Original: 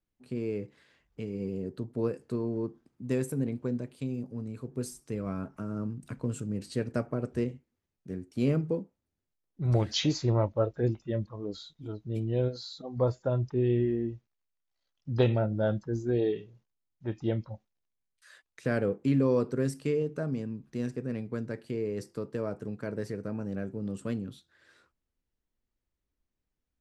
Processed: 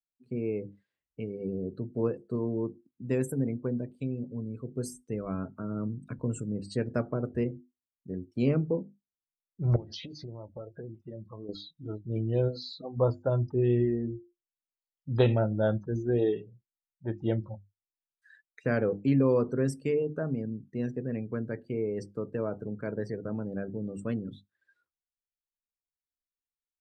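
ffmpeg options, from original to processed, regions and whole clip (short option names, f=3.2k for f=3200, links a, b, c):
-filter_complex "[0:a]asettb=1/sr,asplit=3[a][b][c];[a]atrim=end=9.764[d];[b]atrim=start=9.76:end=11.49,asetpts=PTS-STARTPTS,afade=t=in:d=0.004:c=qsin,afade=t=out:st=1.726:d=0.004:c=qsin,highpass=f=63:p=1,equalizer=f=9.7k:t=o:w=1.2:g=-14,acompressor=threshold=-38dB:ratio=16:attack=3.2:release=140:knee=1:detection=peak[e];[c]atrim=start=11.486[f];[d][e]acrossfade=d=0.004:c1=hsin:c2=qsin[g];[g][f]acrossfade=d=0.004:c1=qsin:c2=hsin,bandreject=f=50:t=h:w=6,bandreject=f=100:t=h:w=6,bandreject=f=150:t=h:w=6,bandreject=f=200:t=h:w=6,bandreject=f=250:t=h:w=6,bandreject=f=300:t=h:w=6,bandreject=f=350:t=h:w=6,afftdn=nr=25:nf=-49,volume=1.5dB"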